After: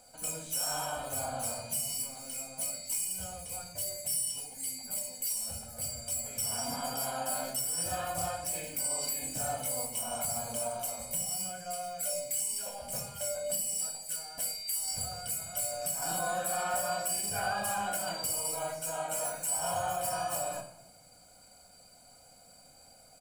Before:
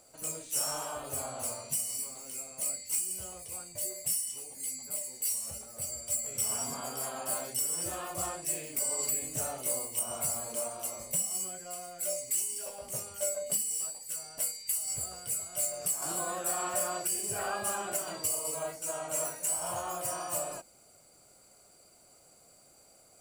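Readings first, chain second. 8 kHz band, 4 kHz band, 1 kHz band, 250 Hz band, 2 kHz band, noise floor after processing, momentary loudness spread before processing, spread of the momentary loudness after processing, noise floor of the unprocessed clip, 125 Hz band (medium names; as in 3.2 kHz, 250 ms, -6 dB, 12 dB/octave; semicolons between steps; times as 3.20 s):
-1.5 dB, +3.5 dB, +4.0 dB, +1.0 dB, +3.5 dB, -58 dBFS, 7 LU, 6 LU, -60 dBFS, +3.0 dB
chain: comb 1.3 ms, depth 58%; peak limiter -23.5 dBFS, peak gain reduction 6.5 dB; simulated room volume 2800 m³, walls furnished, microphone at 1.9 m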